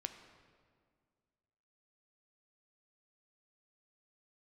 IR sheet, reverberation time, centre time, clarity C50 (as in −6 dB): 2.0 s, 22 ms, 8.5 dB